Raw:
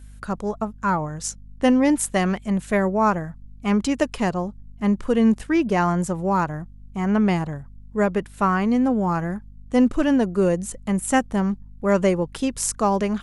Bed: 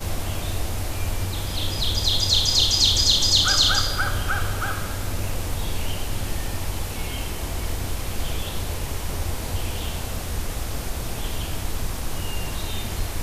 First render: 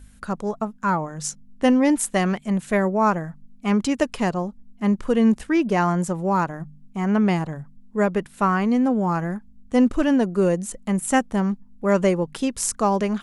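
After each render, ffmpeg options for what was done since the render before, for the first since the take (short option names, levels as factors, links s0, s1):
-af "bandreject=f=50:t=h:w=4,bandreject=f=100:t=h:w=4,bandreject=f=150:t=h:w=4"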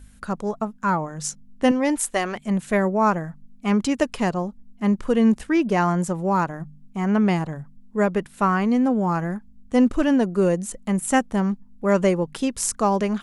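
-filter_complex "[0:a]asettb=1/sr,asplit=3[s0][s1][s2];[s0]atrim=end=1.714[s3];[s1]atrim=start=1.71:end=2.36,asetpts=PTS-STARTPTS,afade=t=in:d=0.004:c=qsin,afade=t=out:st=0.646:d=0.004:c=qsin,equalizer=f=180:w=1.5:g=-12.5[s4];[s2]atrim=start=2.356[s5];[s3][s4]acrossfade=d=0.004:c1=hsin:c2=qsin[s6];[s6][s5]acrossfade=d=0.004:c1=qsin:c2=hsin"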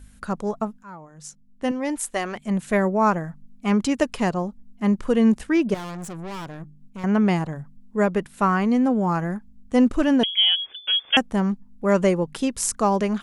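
-filter_complex "[0:a]asettb=1/sr,asplit=3[s0][s1][s2];[s0]atrim=end=5.744[s3];[s1]atrim=start=5.74:end=7.04,asetpts=PTS-STARTPTS,afade=t=in:d=0.004:c=qsin,afade=t=out:st=1.296:d=0.004:c=qsin,aeval=exprs='(tanh(39.8*val(0)+0.45)-tanh(0.45))/39.8':c=same[s4];[s2]atrim=start=7.036[s5];[s3][s4]acrossfade=d=0.004:c1=hsin:c2=qsin[s6];[s6][s5]acrossfade=d=0.004:c1=qsin:c2=hsin,asettb=1/sr,asplit=3[s7][s8][s9];[s7]atrim=end=10.234[s10];[s8]atrim=start=10.23:end=11.17,asetpts=PTS-STARTPTS,afade=t=in:d=0.004:c=qsin,afade=t=out:st=0.936:d=0.004:c=qsin,lowpass=f=3000:t=q:w=0.5098,lowpass=f=3000:t=q:w=0.6013,lowpass=f=3000:t=q:w=0.9,lowpass=f=3000:t=q:w=2.563,afreqshift=-3500[s11];[s9]atrim=start=11.166[s12];[s10][s11]acrossfade=d=0.004:c1=hsin:c2=qsin[s13];[s13][s12]acrossfade=d=0.004:c1=qsin:c2=hsin,asplit=2[s14][s15];[s14]atrim=end=0.83,asetpts=PTS-STARTPTS,afade=t=out:st=0.826:d=0.004:c=hsin:silence=0.0749894[s16];[s15]atrim=start=0.83,asetpts=PTS-STARTPTS,afade=t=in:d=1.93:silence=0.0749894[s17];[s16][s17]concat=n=2:v=0:a=1"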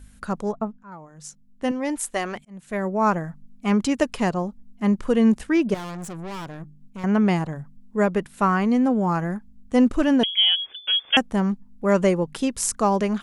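-filter_complex "[0:a]asettb=1/sr,asplit=3[s0][s1][s2];[s0]atrim=end=0.524[s3];[s1]atrim=start=0.52:end=0.92,asetpts=PTS-STARTPTS,afade=t=in:d=0.004:c=qsin,afade=t=out:st=0.396:d=0.004:c=qsin,lowpass=f=1200:p=1[s4];[s2]atrim=start=0.916[s5];[s3][s4]acrossfade=d=0.004:c1=hsin:c2=qsin[s6];[s6][s5]acrossfade=d=0.004:c1=qsin:c2=hsin,asplit=2[s7][s8];[s7]atrim=end=2.45,asetpts=PTS-STARTPTS,afade=t=out:st=2.446:d=0.004:c=hsin[s9];[s8]atrim=start=2.45,asetpts=PTS-STARTPTS,afade=t=in:d=0.68[s10];[s9][s10]concat=n=2:v=0:a=1"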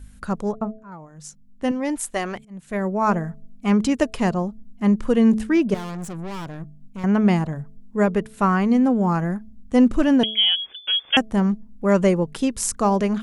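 -af "lowshelf=f=230:g=5,bandreject=f=217.7:t=h:w=4,bandreject=f=435.4:t=h:w=4,bandreject=f=653.1:t=h:w=4"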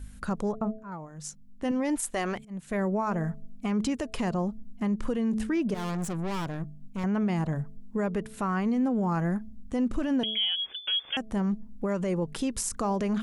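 -af "acompressor=threshold=0.1:ratio=6,alimiter=limit=0.0944:level=0:latency=1:release=48"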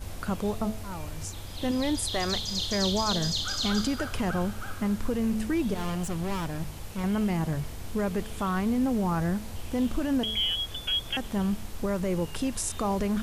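-filter_complex "[1:a]volume=0.237[s0];[0:a][s0]amix=inputs=2:normalize=0"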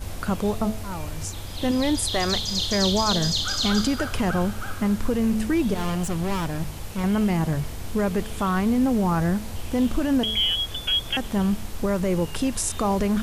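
-af "volume=1.78"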